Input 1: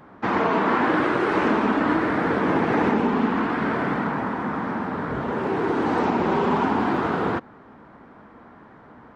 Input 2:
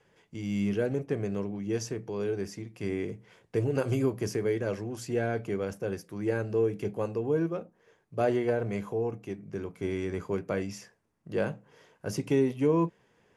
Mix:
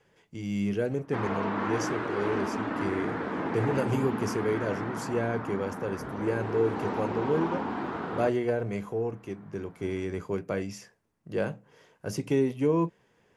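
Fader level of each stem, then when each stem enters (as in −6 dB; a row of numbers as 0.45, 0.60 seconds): −10.5, 0.0 decibels; 0.90, 0.00 seconds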